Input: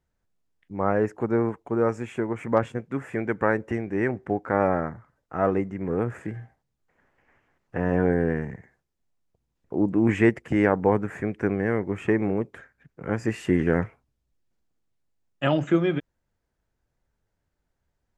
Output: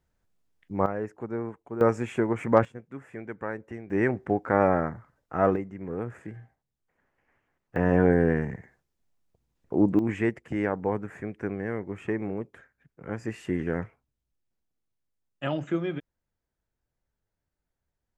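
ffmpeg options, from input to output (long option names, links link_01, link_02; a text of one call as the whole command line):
ffmpeg -i in.wav -af "asetnsamples=nb_out_samples=441:pad=0,asendcmd='0.86 volume volume -9dB;1.81 volume volume 2dB;2.65 volume volume -11dB;3.9 volume volume 0.5dB;5.56 volume volume -7dB;7.76 volume volume 1.5dB;9.99 volume volume -7dB',volume=2dB" out.wav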